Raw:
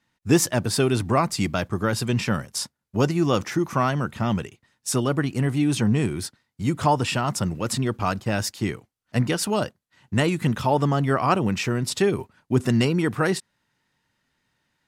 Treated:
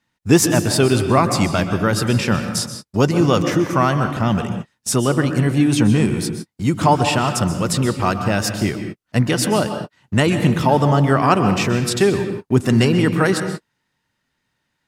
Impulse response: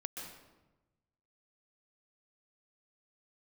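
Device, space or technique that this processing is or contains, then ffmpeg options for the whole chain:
keyed gated reverb: -filter_complex "[0:a]asplit=3[a][b][c];[1:a]atrim=start_sample=2205[d];[b][d]afir=irnorm=-1:irlink=0[e];[c]apad=whole_len=656129[f];[e][f]sidechaingate=range=-60dB:threshold=-50dB:ratio=16:detection=peak,volume=2dB[g];[a][g]amix=inputs=2:normalize=0"

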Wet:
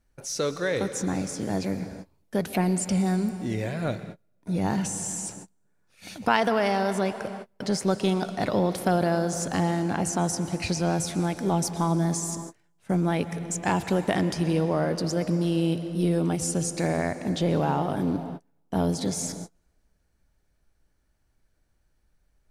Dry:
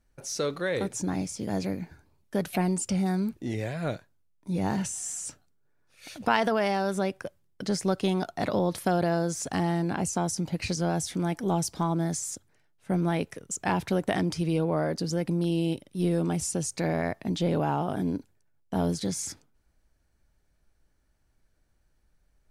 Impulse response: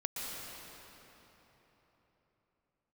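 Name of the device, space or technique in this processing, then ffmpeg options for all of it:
keyed gated reverb: -filter_complex "[0:a]asplit=3[a][b][c];[1:a]atrim=start_sample=2205[d];[b][d]afir=irnorm=-1:irlink=0[e];[c]apad=whole_len=992600[f];[e][f]sidechaingate=range=-36dB:threshold=-53dB:ratio=16:detection=peak,volume=-10dB[g];[a][g]amix=inputs=2:normalize=0"

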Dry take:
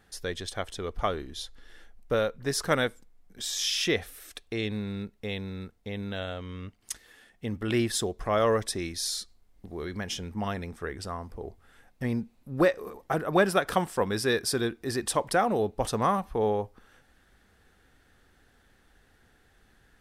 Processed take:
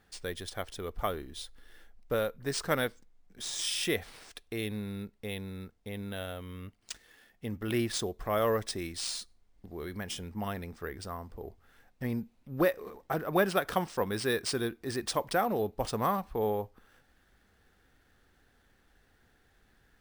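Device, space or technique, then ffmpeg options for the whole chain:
crushed at another speed: -af "asetrate=35280,aresample=44100,acrusher=samples=4:mix=1:aa=0.000001,asetrate=55125,aresample=44100,volume=-4dB"

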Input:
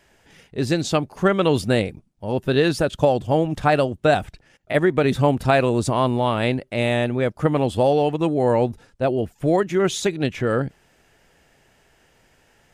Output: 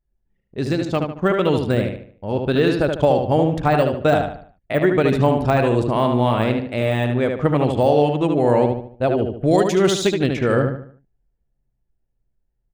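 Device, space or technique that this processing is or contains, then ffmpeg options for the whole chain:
voice memo with heavy noise removal: -filter_complex "[0:a]deesser=0.75,asettb=1/sr,asplit=3[a][b][c];[a]atrim=end=9.514[d];[b]atrim=start=9.51:end=10.12,asetpts=PTS-STARTPTS,afade=t=in:d=0.004:c=qsin,afade=t=out:st=0.606:d=0.004:c=qsin,highshelf=f=2.9k:t=q:w=1.5:g=8[e];[c]atrim=start=10.116[f];[d][e]acrossfade=d=0.004:c1=hsin:c2=qsin[g];[g][f]acrossfade=d=0.004:c1=qsin:c2=hsin,anlmdn=3.98,dynaudnorm=f=510:g=9:m=11.5dB,asplit=2[h][i];[i]adelay=74,lowpass=f=4k:p=1,volume=-4.5dB,asplit=2[j][k];[k]adelay=74,lowpass=f=4k:p=1,volume=0.39,asplit=2[l][m];[m]adelay=74,lowpass=f=4k:p=1,volume=0.39,asplit=2[n][o];[o]adelay=74,lowpass=f=4k:p=1,volume=0.39,asplit=2[p][q];[q]adelay=74,lowpass=f=4k:p=1,volume=0.39[r];[h][j][l][n][p][r]amix=inputs=6:normalize=0,volume=-1dB"

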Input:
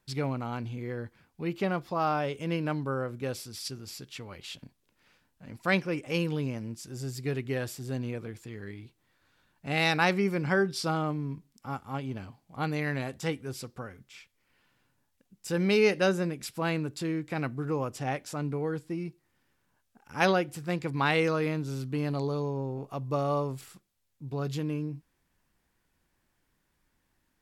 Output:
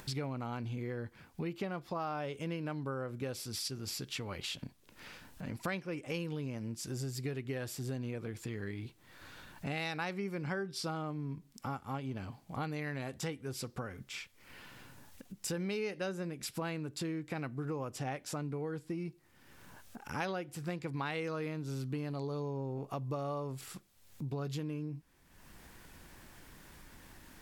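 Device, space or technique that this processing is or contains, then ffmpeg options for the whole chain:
upward and downward compression: -af "acompressor=mode=upward:threshold=-49dB:ratio=2.5,acompressor=threshold=-44dB:ratio=5,volume=7dB"

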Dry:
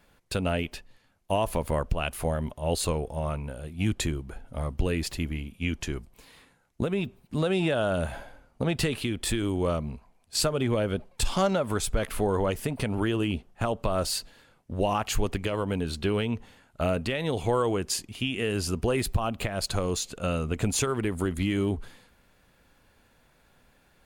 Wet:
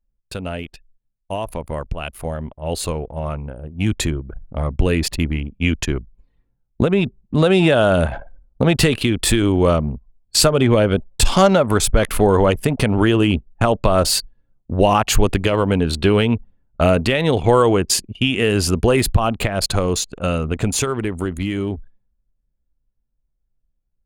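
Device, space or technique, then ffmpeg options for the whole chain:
voice memo with heavy noise removal: -af "anlmdn=1.58,dynaudnorm=f=260:g=31:m=13.5dB"

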